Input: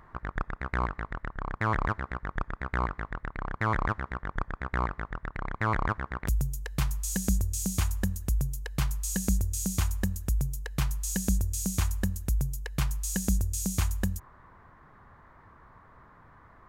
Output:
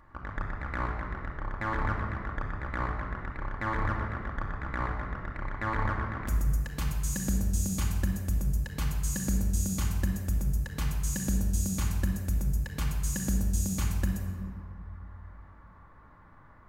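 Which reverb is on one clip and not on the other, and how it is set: shoebox room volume 2800 m³, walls mixed, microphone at 2.4 m; gain -5.5 dB

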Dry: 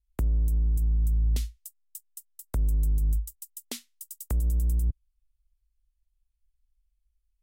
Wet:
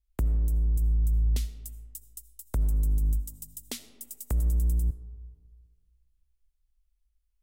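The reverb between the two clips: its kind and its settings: digital reverb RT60 1.7 s, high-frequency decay 0.45×, pre-delay 40 ms, DRR 13.5 dB

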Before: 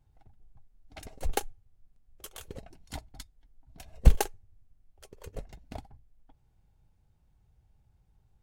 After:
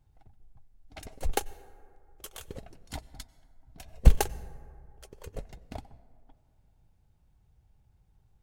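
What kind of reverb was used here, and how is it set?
plate-style reverb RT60 2.3 s, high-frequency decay 0.35×, pre-delay 80 ms, DRR 19 dB; gain +1 dB

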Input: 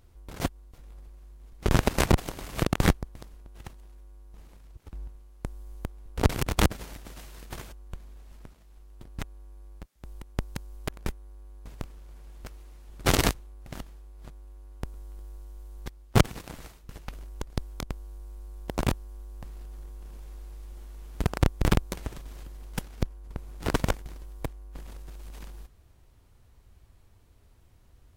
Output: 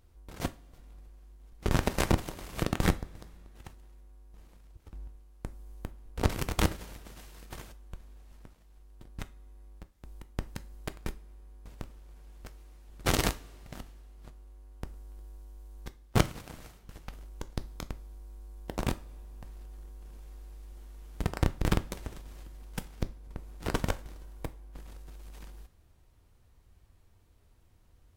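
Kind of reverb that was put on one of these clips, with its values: two-slope reverb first 0.31 s, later 2.6 s, from -22 dB, DRR 11 dB; gain -4.5 dB

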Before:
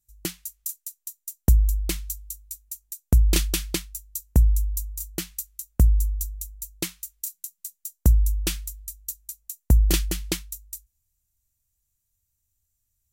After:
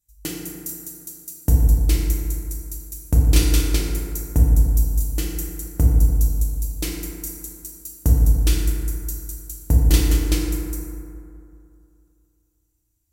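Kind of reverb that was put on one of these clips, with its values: FDN reverb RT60 2.6 s, high-frequency decay 0.35×, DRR -4 dB; gain -1.5 dB

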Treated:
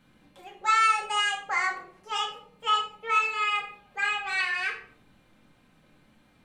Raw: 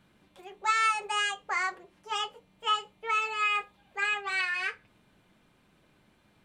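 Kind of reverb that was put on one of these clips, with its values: shoebox room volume 710 m³, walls furnished, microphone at 2.1 m

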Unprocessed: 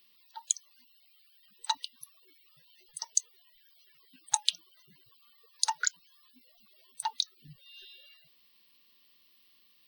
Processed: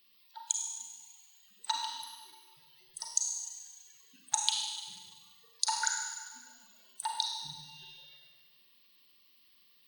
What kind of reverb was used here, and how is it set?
Schroeder reverb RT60 1.5 s, combs from 33 ms, DRR 0 dB; gain -3 dB

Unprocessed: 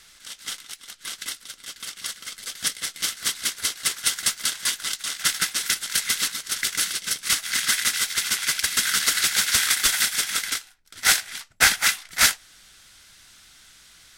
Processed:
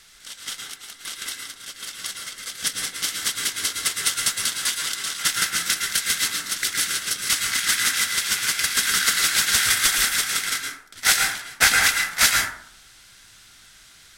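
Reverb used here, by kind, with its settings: plate-style reverb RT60 0.65 s, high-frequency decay 0.4×, pre-delay 0.1 s, DRR 1.5 dB

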